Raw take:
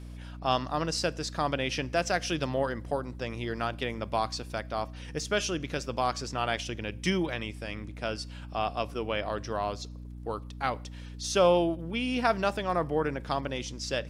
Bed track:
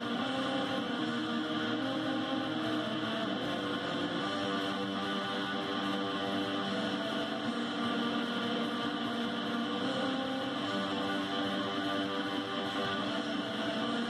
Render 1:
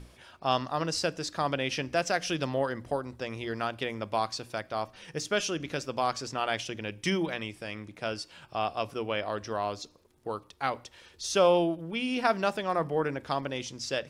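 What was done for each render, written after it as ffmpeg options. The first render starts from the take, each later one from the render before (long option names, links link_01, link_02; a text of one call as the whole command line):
ffmpeg -i in.wav -af "bandreject=frequency=60:width_type=h:width=6,bandreject=frequency=120:width_type=h:width=6,bandreject=frequency=180:width_type=h:width=6,bandreject=frequency=240:width_type=h:width=6,bandreject=frequency=300:width_type=h:width=6" out.wav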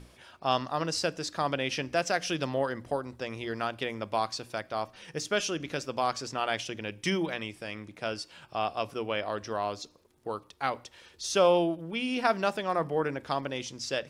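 ffmpeg -i in.wav -af "lowshelf=frequency=88:gain=-5" out.wav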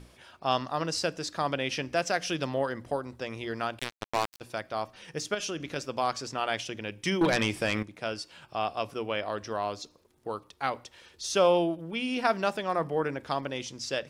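ffmpeg -i in.wav -filter_complex "[0:a]asettb=1/sr,asplit=3[link_01][link_02][link_03];[link_01]atrim=end=3.794[link_04];[link_02]atrim=start=3.79:end=4.41,asetpts=PTS-STARTPTS,afade=type=in:duration=0.004:curve=qsin,afade=type=out:start_time=0.616:duration=0.004:curve=qsin,acrusher=bits=3:mix=0:aa=0.5[link_05];[link_03]atrim=start=4.406[link_06];[link_04][link_05]acrossfade=duration=0.004:curve1=hsin:curve2=qsin[link_07];[link_07][link_06]acrossfade=duration=0.004:curve1=qsin:curve2=hsin,asettb=1/sr,asplit=3[link_08][link_09][link_10];[link_08]atrim=end=5.344[link_11];[link_09]atrim=start=5.34:end=5.76,asetpts=PTS-STARTPTS,afade=type=in:duration=0.004:curve=qsin,afade=type=out:start_time=0.416:duration=0.004:curve=qsin,acompressor=threshold=-29dB:ratio=6:attack=3.2:release=140:knee=1:detection=peak[link_12];[link_10]atrim=start=5.756[link_13];[link_11][link_12]acrossfade=duration=0.004:curve1=hsin:curve2=qsin[link_14];[link_14][link_13]acrossfade=duration=0.004:curve1=qsin:curve2=hsin,asettb=1/sr,asplit=3[link_15][link_16][link_17];[link_15]atrim=end=7.214[link_18];[link_16]atrim=start=7.21:end=7.83,asetpts=PTS-STARTPTS,afade=type=in:duration=0.004:curve=qsin,afade=type=out:start_time=0.616:duration=0.004:curve=qsin,aeval=exprs='0.119*sin(PI/2*2.51*val(0)/0.119)':channel_layout=same[link_19];[link_17]atrim=start=7.826[link_20];[link_18][link_19]acrossfade=duration=0.004:curve1=hsin:curve2=qsin[link_21];[link_21][link_20]acrossfade=duration=0.004:curve1=qsin:curve2=hsin" out.wav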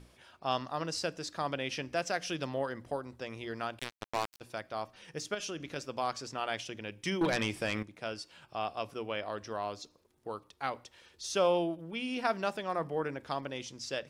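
ffmpeg -i in.wav -af "volume=-5dB" out.wav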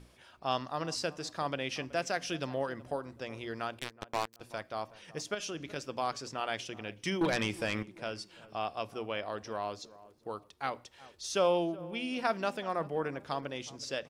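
ffmpeg -i in.wav -filter_complex "[0:a]asplit=2[link_01][link_02];[link_02]adelay=374,lowpass=frequency=1100:poles=1,volume=-17.5dB,asplit=2[link_03][link_04];[link_04]adelay=374,lowpass=frequency=1100:poles=1,volume=0.37,asplit=2[link_05][link_06];[link_06]adelay=374,lowpass=frequency=1100:poles=1,volume=0.37[link_07];[link_01][link_03][link_05][link_07]amix=inputs=4:normalize=0" out.wav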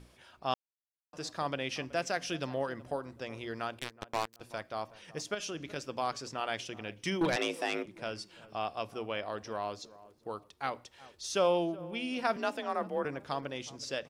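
ffmpeg -i in.wav -filter_complex "[0:a]asettb=1/sr,asplit=3[link_01][link_02][link_03];[link_01]atrim=end=7.364[link_04];[link_02]atrim=start=7.36:end=7.86,asetpts=PTS-STARTPTS,afade=type=in:duration=0.004:curve=qsin,afade=type=out:start_time=0.496:duration=0.004:curve=qsin,afreqshift=160[link_05];[link_03]atrim=start=7.856[link_06];[link_04][link_05]acrossfade=duration=0.004:curve1=hsin:curve2=qsin[link_07];[link_07][link_06]acrossfade=duration=0.004:curve1=qsin:curve2=hsin,asettb=1/sr,asplit=3[link_08][link_09][link_10];[link_08]atrim=end=12.364[link_11];[link_09]atrim=start=12.36:end=13.05,asetpts=PTS-STARTPTS,afade=type=in:duration=0.004:curve=qsin,afade=type=out:start_time=0.686:duration=0.004:curve=qsin,afreqshift=39[link_12];[link_10]atrim=start=13.046[link_13];[link_11][link_12]acrossfade=duration=0.004:curve1=hsin:curve2=qsin[link_14];[link_14][link_13]acrossfade=duration=0.004:curve1=qsin:curve2=hsin,asplit=3[link_15][link_16][link_17];[link_15]atrim=end=0.54,asetpts=PTS-STARTPTS,afade=type=out:start_time=0.536:duration=0.004:curve=hsin[link_18];[link_16]atrim=start=0.54:end=1.13,asetpts=PTS-STARTPTS,volume=0[link_19];[link_17]atrim=start=1.13,asetpts=PTS-STARTPTS,afade=type=in:duration=0.004:curve=hsin[link_20];[link_18][link_19][link_20]concat=n=3:v=0:a=1" out.wav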